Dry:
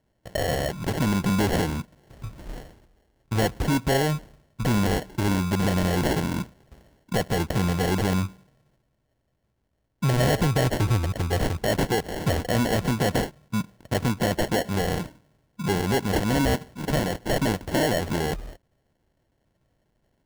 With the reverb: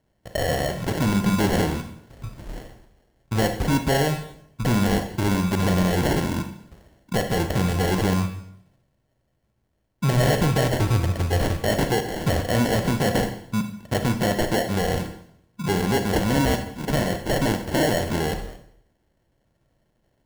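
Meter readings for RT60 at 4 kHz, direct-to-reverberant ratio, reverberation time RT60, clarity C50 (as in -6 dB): 0.60 s, 7.0 dB, 0.70 s, 9.0 dB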